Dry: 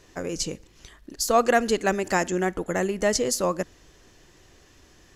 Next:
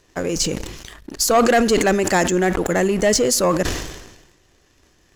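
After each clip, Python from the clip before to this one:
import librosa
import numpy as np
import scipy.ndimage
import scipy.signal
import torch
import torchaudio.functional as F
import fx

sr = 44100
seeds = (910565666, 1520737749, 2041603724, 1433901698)

y = fx.leveller(x, sr, passes=2)
y = fx.sustainer(y, sr, db_per_s=53.0)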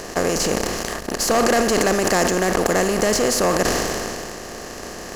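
y = fx.bin_compress(x, sr, power=0.4)
y = y * librosa.db_to_amplitude(-6.5)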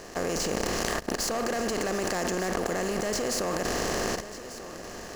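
y = scipy.signal.medfilt(x, 3)
y = fx.level_steps(y, sr, step_db=15)
y = y + 10.0 ** (-14.0 / 20.0) * np.pad(y, (int(1192 * sr / 1000.0), 0))[:len(y)]
y = y * librosa.db_to_amplitude(1.0)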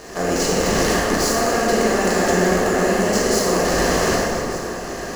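y = fx.rev_plate(x, sr, seeds[0], rt60_s=2.9, hf_ratio=0.5, predelay_ms=0, drr_db=-6.5)
y = y * librosa.db_to_amplitude(3.5)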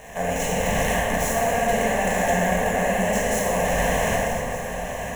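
y = fx.fixed_phaser(x, sr, hz=1300.0, stages=6)
y = y + 10.0 ** (-12.0 / 20.0) * np.pad(y, (int(938 * sr / 1000.0), 0))[:len(y)]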